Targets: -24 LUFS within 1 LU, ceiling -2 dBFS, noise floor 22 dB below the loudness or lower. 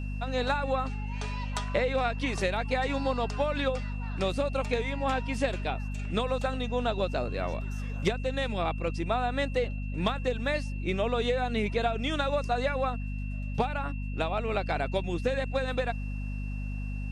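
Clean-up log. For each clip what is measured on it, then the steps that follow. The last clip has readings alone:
hum 50 Hz; highest harmonic 250 Hz; hum level -31 dBFS; steady tone 2.7 kHz; tone level -47 dBFS; loudness -30.5 LUFS; peak level -14.5 dBFS; loudness target -24.0 LUFS
-> hum notches 50/100/150/200/250 Hz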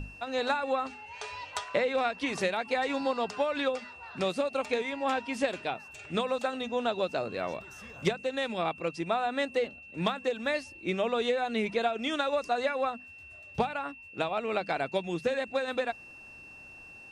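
hum not found; steady tone 2.7 kHz; tone level -47 dBFS
-> band-stop 2.7 kHz, Q 30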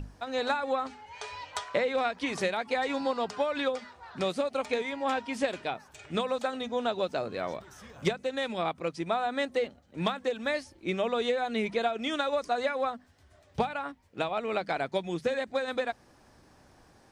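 steady tone not found; loudness -31.5 LUFS; peak level -15.5 dBFS; loudness target -24.0 LUFS
-> trim +7.5 dB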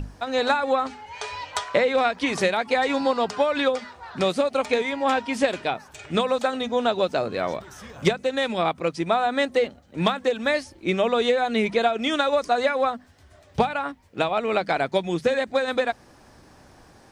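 loudness -24.0 LUFS; peak level -8.0 dBFS; noise floor -53 dBFS

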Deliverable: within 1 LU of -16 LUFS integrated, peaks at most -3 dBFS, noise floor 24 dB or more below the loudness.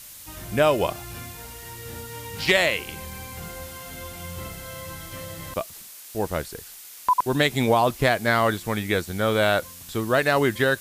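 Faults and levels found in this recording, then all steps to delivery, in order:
noise floor -43 dBFS; noise floor target -47 dBFS; loudness -23.0 LUFS; peak level -7.0 dBFS; loudness target -16.0 LUFS
-> noise reduction 6 dB, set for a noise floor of -43 dBFS; trim +7 dB; peak limiter -3 dBFS

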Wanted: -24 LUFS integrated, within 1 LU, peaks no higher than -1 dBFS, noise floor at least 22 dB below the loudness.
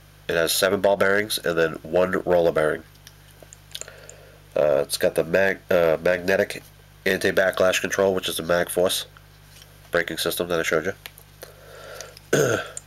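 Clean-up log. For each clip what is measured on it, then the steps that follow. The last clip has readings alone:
clipped samples 0.6%; clipping level -10.0 dBFS; hum 50 Hz; highest harmonic 150 Hz; hum level -49 dBFS; loudness -22.0 LUFS; peak level -10.0 dBFS; loudness target -24.0 LUFS
-> clip repair -10 dBFS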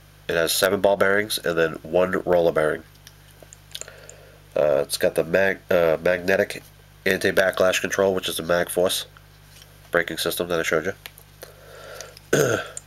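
clipped samples 0.0%; hum 50 Hz; highest harmonic 150 Hz; hum level -49 dBFS
-> de-hum 50 Hz, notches 3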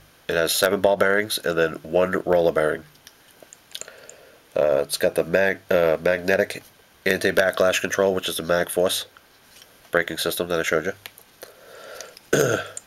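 hum not found; loudness -22.0 LUFS; peak level -1.0 dBFS; loudness target -24.0 LUFS
-> trim -2 dB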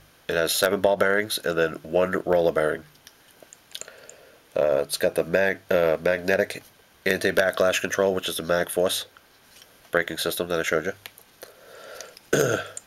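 loudness -24.0 LUFS; peak level -3.0 dBFS; noise floor -56 dBFS

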